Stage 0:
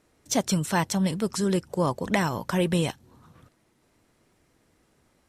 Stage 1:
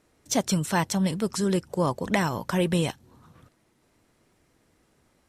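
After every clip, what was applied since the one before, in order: no audible change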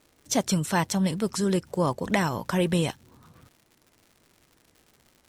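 crackle 160 per s -44 dBFS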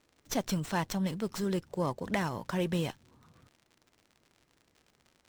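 sliding maximum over 3 samples; trim -7 dB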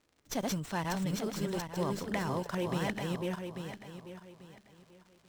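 backward echo that repeats 420 ms, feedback 50%, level -1 dB; trim -3.5 dB

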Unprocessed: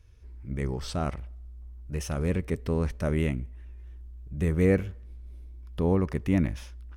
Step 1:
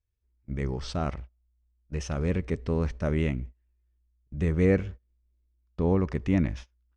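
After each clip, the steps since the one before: low-pass 6.9 kHz 24 dB/octave; gate -37 dBFS, range -27 dB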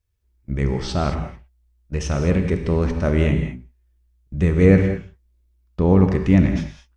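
gated-style reverb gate 240 ms flat, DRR 5 dB; trim +7.5 dB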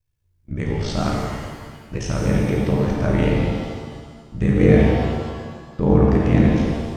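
ring modulator 28 Hz; pitch-shifted reverb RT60 1.6 s, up +7 st, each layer -8 dB, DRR -0.5 dB

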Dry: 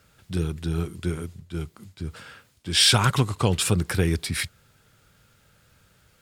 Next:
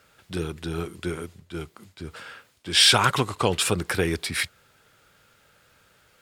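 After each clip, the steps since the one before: tone controls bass -11 dB, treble -4 dB; trim +3.5 dB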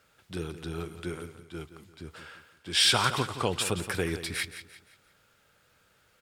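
feedback delay 172 ms, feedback 38%, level -12 dB; trim -6 dB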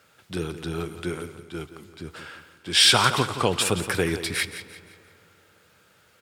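high-pass 84 Hz; on a send at -19 dB: reverberation RT60 3.3 s, pre-delay 30 ms; on the sum: trim +6 dB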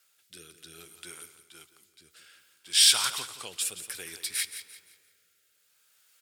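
rotary cabinet horn 0.6 Hz; pre-emphasis filter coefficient 0.97; trim +2 dB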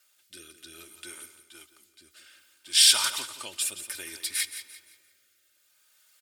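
comb 3.3 ms, depth 67%

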